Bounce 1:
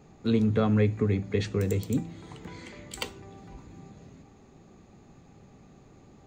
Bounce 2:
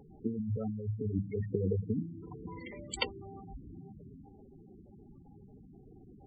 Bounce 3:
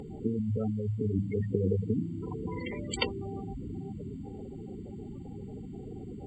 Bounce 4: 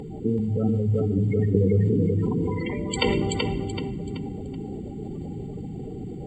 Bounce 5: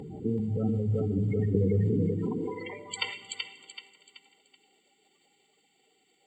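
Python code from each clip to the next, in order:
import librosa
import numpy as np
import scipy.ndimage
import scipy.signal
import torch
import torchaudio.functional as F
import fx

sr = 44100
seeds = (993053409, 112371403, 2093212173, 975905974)

y1 = fx.over_compress(x, sr, threshold_db=-27.0, ratio=-0.5)
y1 = fx.spec_gate(y1, sr, threshold_db=-10, keep='strong')
y1 = fx.peak_eq(y1, sr, hz=130.0, db=-5.0, octaves=2.3)
y2 = fx.bin_compress(y1, sr, power=0.6)
y2 = F.gain(torch.from_numpy(y2), 1.5).numpy()
y3 = fx.echo_feedback(y2, sr, ms=380, feedback_pct=35, wet_db=-4)
y3 = fx.room_shoebox(y3, sr, seeds[0], volume_m3=3500.0, walls='mixed', distance_m=0.53)
y3 = fx.sustainer(y3, sr, db_per_s=20.0)
y3 = F.gain(torch.from_numpy(y3), 5.0).numpy()
y4 = fx.filter_sweep_highpass(y3, sr, from_hz=81.0, to_hz=2100.0, start_s=1.96, end_s=3.22, q=0.94)
y4 = fx.echo_feedback(y4, sr, ms=309, feedback_pct=59, wet_db=-23.5)
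y4 = F.gain(torch.from_numpy(y4), -5.5).numpy()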